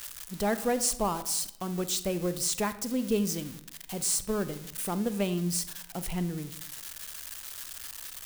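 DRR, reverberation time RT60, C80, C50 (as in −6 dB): 12.0 dB, 0.75 s, 16.5 dB, 13.5 dB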